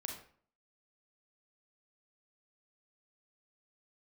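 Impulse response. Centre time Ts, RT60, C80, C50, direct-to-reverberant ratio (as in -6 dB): 28 ms, 0.50 s, 9.5 dB, 5.0 dB, 1.5 dB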